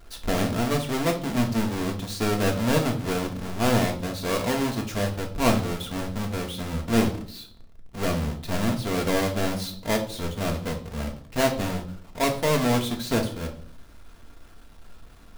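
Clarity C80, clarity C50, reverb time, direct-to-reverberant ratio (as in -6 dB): 15.5 dB, 11.0 dB, 0.55 s, 2.5 dB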